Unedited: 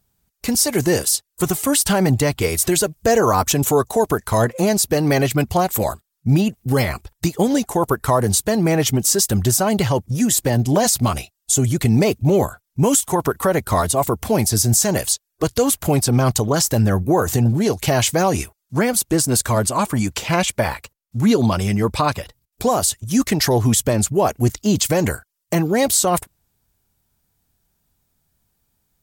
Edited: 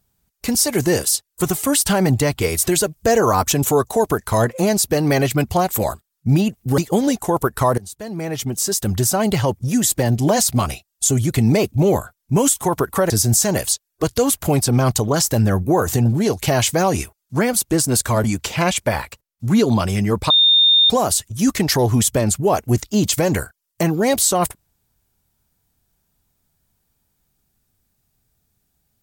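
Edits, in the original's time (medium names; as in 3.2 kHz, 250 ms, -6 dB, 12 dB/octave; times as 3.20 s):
6.78–7.25 s: delete
8.25–9.72 s: fade in, from -23 dB
13.57–14.50 s: delete
19.64–19.96 s: delete
22.02–22.62 s: bleep 3.64 kHz -9.5 dBFS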